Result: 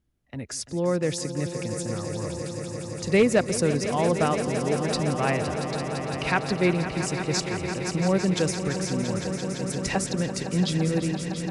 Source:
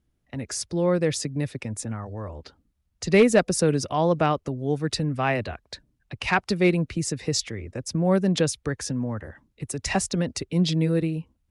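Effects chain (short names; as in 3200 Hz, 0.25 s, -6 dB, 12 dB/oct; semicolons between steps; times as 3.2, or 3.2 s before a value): swelling echo 0.17 s, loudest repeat 5, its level -12 dB; gain -2.5 dB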